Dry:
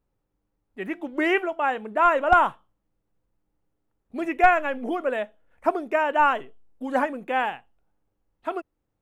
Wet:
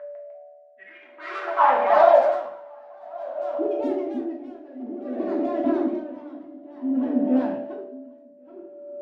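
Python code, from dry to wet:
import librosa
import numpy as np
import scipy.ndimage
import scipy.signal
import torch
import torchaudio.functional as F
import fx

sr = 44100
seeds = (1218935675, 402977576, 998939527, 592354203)

p1 = fx.rotary(x, sr, hz=5.5)
p2 = fx.fold_sine(p1, sr, drive_db=18, ceiling_db=-5.5)
p3 = p1 + F.gain(torch.from_numpy(p2), -11.0).numpy()
p4 = p3 + 10.0 ** (-24.0 / 20.0) * np.sin(2.0 * np.pi * 580.0 * np.arange(len(p3)) / sr)
p5 = fx.filter_sweep_bandpass(p4, sr, from_hz=1700.0, to_hz=260.0, start_s=0.84, end_s=3.4, q=4.6)
p6 = p5 + fx.echo_single(p5, sr, ms=1095, db=-13.5, dry=0)
p7 = fx.echo_pitch(p6, sr, ms=151, semitones=2, count=2, db_per_echo=-3.0)
p8 = fx.rev_double_slope(p7, sr, seeds[0], early_s=0.53, late_s=2.8, knee_db=-18, drr_db=-2.5)
p9 = p8 * 10.0 ** (-21 * (0.5 - 0.5 * np.cos(2.0 * np.pi * 0.54 * np.arange(len(p8)) / sr)) / 20.0)
y = F.gain(torch.from_numpy(p9), 3.5).numpy()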